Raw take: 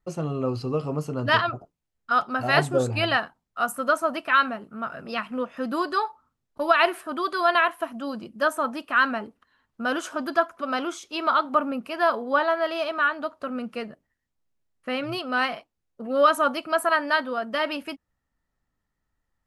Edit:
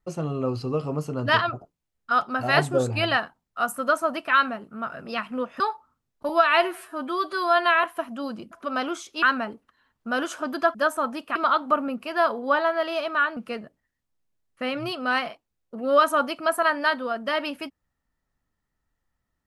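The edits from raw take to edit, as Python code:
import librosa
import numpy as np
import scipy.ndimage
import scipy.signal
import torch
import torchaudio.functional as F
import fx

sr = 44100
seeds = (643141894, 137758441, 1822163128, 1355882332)

y = fx.edit(x, sr, fx.cut(start_s=5.6, length_s=0.35),
    fx.stretch_span(start_s=6.64, length_s=1.03, factor=1.5),
    fx.swap(start_s=8.35, length_s=0.61, other_s=10.48, other_length_s=0.71),
    fx.cut(start_s=13.2, length_s=0.43), tone=tone)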